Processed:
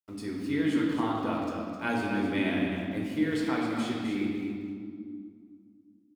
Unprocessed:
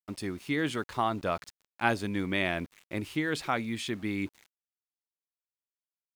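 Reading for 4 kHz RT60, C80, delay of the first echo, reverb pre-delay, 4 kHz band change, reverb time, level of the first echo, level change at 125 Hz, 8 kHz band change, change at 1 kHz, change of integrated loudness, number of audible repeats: 1.4 s, 0.5 dB, 259 ms, 4 ms, −2.5 dB, 2.2 s, −7.5 dB, 0.0 dB, −4.5 dB, −2.0 dB, +1.5 dB, 1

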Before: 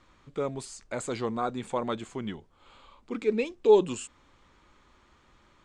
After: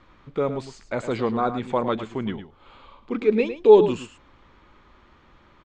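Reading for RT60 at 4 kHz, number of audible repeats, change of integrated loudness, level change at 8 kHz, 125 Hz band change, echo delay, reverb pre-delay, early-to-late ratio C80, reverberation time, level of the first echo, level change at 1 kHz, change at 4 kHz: no reverb audible, 1, +7.0 dB, can't be measured, +7.0 dB, 107 ms, no reverb audible, no reverb audible, no reverb audible, −11.0 dB, +6.5 dB, +3.0 dB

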